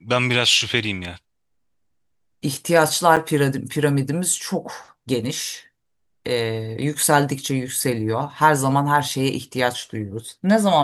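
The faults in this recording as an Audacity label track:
3.160000	3.170000	dropout 6.6 ms

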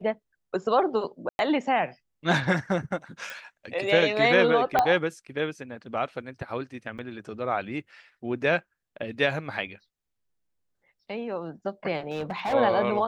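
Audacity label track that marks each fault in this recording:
1.290000	1.390000	dropout 101 ms
3.300000	3.300000	pop
4.790000	4.790000	pop -8 dBFS
6.980000	6.990000	dropout 7.3 ms
12.110000	12.540000	clipped -25 dBFS

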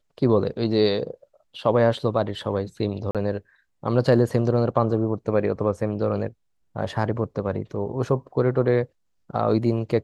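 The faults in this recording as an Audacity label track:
3.110000	3.150000	dropout 37 ms

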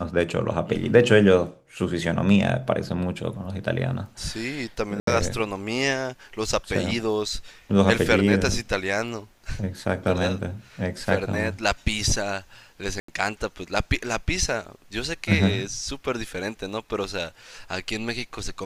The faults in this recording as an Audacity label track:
5.000000	5.070000	dropout 73 ms
13.000000	13.080000	dropout 84 ms

